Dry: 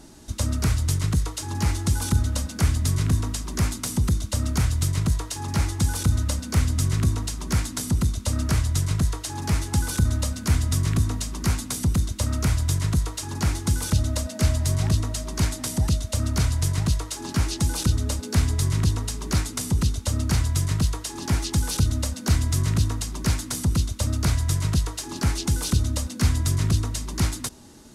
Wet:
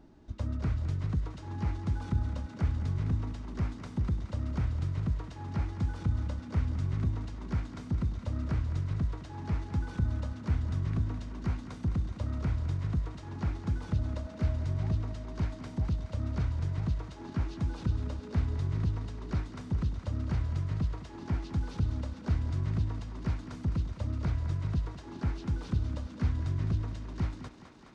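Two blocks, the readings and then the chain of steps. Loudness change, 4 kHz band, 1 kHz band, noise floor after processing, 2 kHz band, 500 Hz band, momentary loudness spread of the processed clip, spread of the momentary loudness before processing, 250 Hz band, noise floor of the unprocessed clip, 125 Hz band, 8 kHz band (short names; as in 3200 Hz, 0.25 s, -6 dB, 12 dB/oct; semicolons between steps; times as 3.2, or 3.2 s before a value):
-9.0 dB, -21.0 dB, -10.5 dB, -46 dBFS, -13.5 dB, -9.0 dB, 5 LU, 4 LU, -8.5 dB, -38 dBFS, -8.5 dB, under -30 dB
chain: tape spacing loss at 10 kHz 34 dB; thinning echo 0.21 s, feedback 82%, high-pass 230 Hz, level -10.5 dB; gain -8 dB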